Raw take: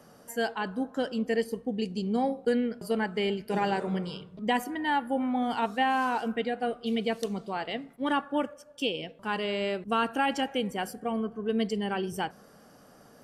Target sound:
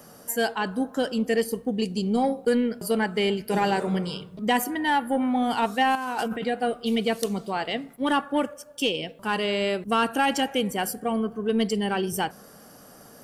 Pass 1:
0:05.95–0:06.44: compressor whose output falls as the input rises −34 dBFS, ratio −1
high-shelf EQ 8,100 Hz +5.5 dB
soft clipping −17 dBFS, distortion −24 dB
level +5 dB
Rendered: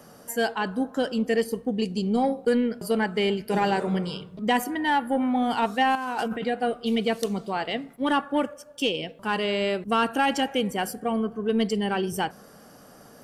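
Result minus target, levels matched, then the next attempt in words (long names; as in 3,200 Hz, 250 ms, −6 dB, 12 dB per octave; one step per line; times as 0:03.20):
8,000 Hz band −4.0 dB
0:05.95–0:06.44: compressor whose output falls as the input rises −34 dBFS, ratio −1
high-shelf EQ 8,100 Hz +13.5 dB
soft clipping −17 dBFS, distortion −24 dB
level +5 dB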